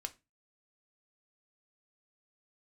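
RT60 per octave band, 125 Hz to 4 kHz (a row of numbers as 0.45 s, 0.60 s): 0.40 s, 0.35 s, 0.25 s, 0.25 s, 0.25 s, 0.20 s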